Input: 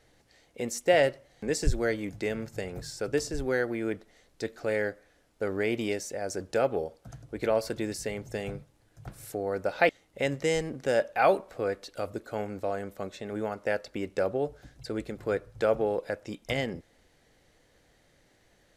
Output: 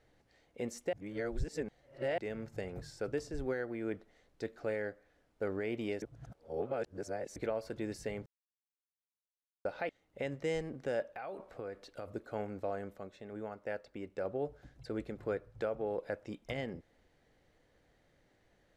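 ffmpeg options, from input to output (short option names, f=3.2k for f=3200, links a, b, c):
-filter_complex "[0:a]asettb=1/sr,asplit=3[a][b][c];[a]atrim=end=11.064[d];[b]atrim=start=11.06:end=12.12,asetpts=PTS-STARTPTS,afade=t=in:d=0.004:c=qsin,afade=t=out:st=1.056:d=0.004:c=qsin,acompressor=threshold=-32dB:ratio=16:attack=3.2:release=140:knee=1:detection=peak[e];[c]atrim=start=12.116[f];[d][e]acrossfade=d=0.004:c1=hsin:c2=qsin[g];[g][f]acrossfade=d=0.004:c1=qsin:c2=hsin,asplit=9[h][i][j][k][l][m][n][o][p];[h]atrim=end=0.932[q];[i]atrim=start=0.928:end=2.182,asetpts=PTS-STARTPTS,areverse[r];[j]atrim=start=2.178:end=6.022[s];[k]atrim=start=6.018:end=7.362,asetpts=PTS-STARTPTS,areverse[t];[l]atrim=start=7.358:end=8.26,asetpts=PTS-STARTPTS,afade=t=out:st=0.898:d=0.004:c=hsin[u];[m]atrim=start=8.26:end=9.65,asetpts=PTS-STARTPTS,volume=0[v];[n]atrim=start=9.65:end=12.982,asetpts=PTS-STARTPTS,afade=t=in:d=0.004:c=hsin[w];[o]atrim=start=12.978:end=14.252,asetpts=PTS-STARTPTS,volume=-5dB[x];[p]atrim=start=14.248[y];[q][r]acrossfade=d=0.004:c1=hsin:c2=hsin[z];[z][s]acrossfade=d=0.004:c1=hsin:c2=hsin[aa];[aa][t]acrossfade=d=0.004:c1=hsin:c2=hsin[ab];[u][v][w]concat=n=3:v=0:a=1[ac];[ab][ac]acrossfade=d=0.004:c1=hsin:c2=hsin[ad];[ad][x]acrossfade=d=0.004:c1=hsin:c2=hsin[ae];[ae][y]acrossfade=d=0.004:c1=hsin:c2=hsin,highshelf=f=4k:g=-11,alimiter=limit=-20.5dB:level=0:latency=1:release=373,volume=-5dB"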